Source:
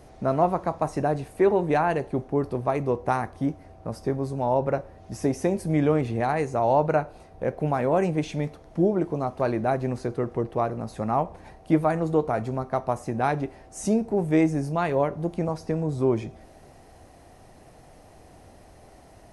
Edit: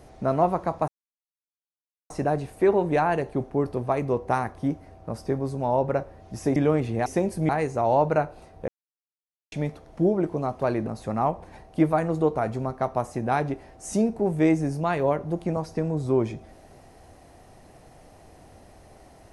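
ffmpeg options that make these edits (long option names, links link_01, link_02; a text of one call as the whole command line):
ffmpeg -i in.wav -filter_complex "[0:a]asplit=8[link_01][link_02][link_03][link_04][link_05][link_06][link_07][link_08];[link_01]atrim=end=0.88,asetpts=PTS-STARTPTS,afade=type=out:start_time=0.876:duration=0.004:curve=hsin,apad=pad_dur=1.22[link_09];[link_02]atrim=start=0.88:end=5.342,asetpts=PTS-STARTPTS,afade=type=in:duration=0.004:curve=hsin[link_10];[link_03]atrim=start=5.768:end=6.272[link_11];[link_04]atrim=start=5.338:end=5.772[link_12];[link_05]atrim=start=6.268:end=7.46,asetpts=PTS-STARTPTS,afade=type=out:start_time=1.188:duration=0.004:curve=hsin[link_13];[link_06]atrim=start=7.46:end=8.3,asetpts=PTS-STARTPTS,volume=0[link_14];[link_07]atrim=start=8.3:end=9.652,asetpts=PTS-STARTPTS,afade=type=in:duration=0.004:curve=hsin[link_15];[link_08]atrim=start=10.788[link_16];[link_09][link_10]concat=n=2:v=0:a=1[link_17];[link_17][link_11]acrossfade=duration=0.004:curve1=hsin:curve2=hsin[link_18];[link_18][link_12]acrossfade=duration=0.004:curve1=hsin:curve2=hsin[link_19];[link_13][link_14][link_15]concat=n=3:v=0:a=1[link_20];[link_19][link_20]acrossfade=duration=0.004:curve1=hsin:curve2=hsin[link_21];[link_21][link_16]acrossfade=duration=0.004:curve1=hsin:curve2=hsin" out.wav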